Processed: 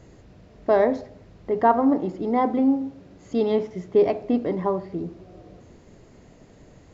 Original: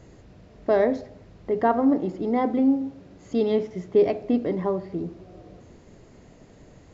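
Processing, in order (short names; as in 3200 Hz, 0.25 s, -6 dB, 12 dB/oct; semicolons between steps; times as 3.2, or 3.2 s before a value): dynamic EQ 950 Hz, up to +6 dB, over -38 dBFS, Q 1.7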